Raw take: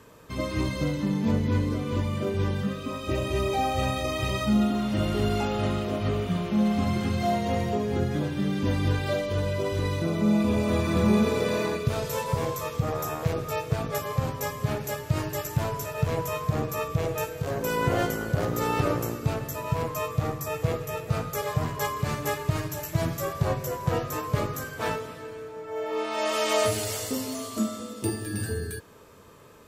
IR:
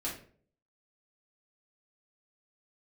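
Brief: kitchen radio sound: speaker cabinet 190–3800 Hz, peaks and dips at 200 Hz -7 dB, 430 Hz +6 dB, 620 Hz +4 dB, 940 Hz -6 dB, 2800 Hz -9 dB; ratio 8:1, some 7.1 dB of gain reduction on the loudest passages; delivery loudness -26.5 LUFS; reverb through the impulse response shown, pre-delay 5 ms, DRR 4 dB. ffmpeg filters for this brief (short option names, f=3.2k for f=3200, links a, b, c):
-filter_complex "[0:a]acompressor=threshold=-26dB:ratio=8,asplit=2[a][b];[1:a]atrim=start_sample=2205,adelay=5[c];[b][c]afir=irnorm=-1:irlink=0,volume=-7dB[d];[a][d]amix=inputs=2:normalize=0,highpass=190,equalizer=f=200:t=q:w=4:g=-7,equalizer=f=430:t=q:w=4:g=6,equalizer=f=620:t=q:w=4:g=4,equalizer=f=940:t=q:w=4:g=-6,equalizer=f=2.8k:t=q:w=4:g=-9,lowpass=f=3.8k:w=0.5412,lowpass=f=3.8k:w=1.3066,volume=3.5dB"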